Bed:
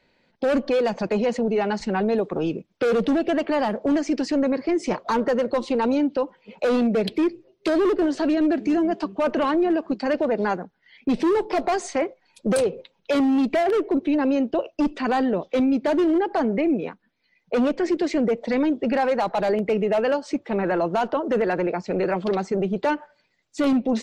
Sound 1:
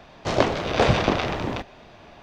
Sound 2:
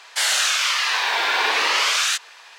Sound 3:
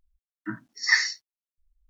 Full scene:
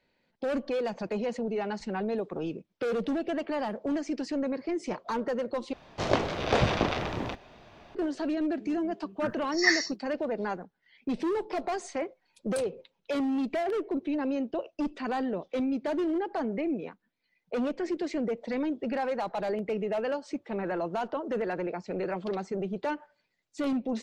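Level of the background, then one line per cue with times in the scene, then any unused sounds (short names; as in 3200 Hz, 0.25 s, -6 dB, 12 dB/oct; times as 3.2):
bed -9 dB
5.73 replace with 1 -5.5 dB
8.75 add 3 -3 dB
not used: 2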